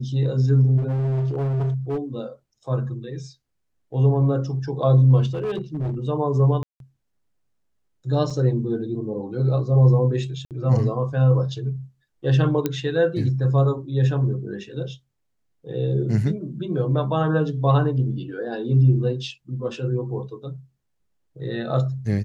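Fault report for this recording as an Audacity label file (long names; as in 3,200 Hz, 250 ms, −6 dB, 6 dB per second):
0.770000	1.980000	clipping −20.5 dBFS
5.330000	5.950000	clipping −22 dBFS
6.630000	6.800000	drop-out 172 ms
8.300000	8.300000	drop-out 4.3 ms
10.450000	10.510000	drop-out 58 ms
12.660000	12.660000	click −9 dBFS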